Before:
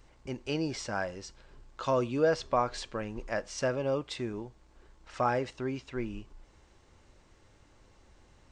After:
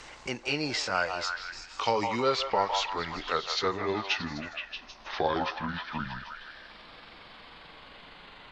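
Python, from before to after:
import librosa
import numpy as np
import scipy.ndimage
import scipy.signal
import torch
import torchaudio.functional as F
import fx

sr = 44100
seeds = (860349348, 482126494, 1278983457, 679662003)

y = fx.pitch_glide(x, sr, semitones=-12.0, runs='starting unshifted')
y = scipy.signal.sosfilt(scipy.signal.butter(2, 7500.0, 'lowpass', fs=sr, output='sos'), y)
y = fx.tilt_shelf(y, sr, db=-8.5, hz=690.0)
y = fx.echo_stepped(y, sr, ms=157, hz=850.0, octaves=0.7, feedback_pct=70, wet_db=-4.0)
y = fx.band_squash(y, sr, depth_pct=40)
y = F.gain(torch.from_numpy(y), 4.5).numpy()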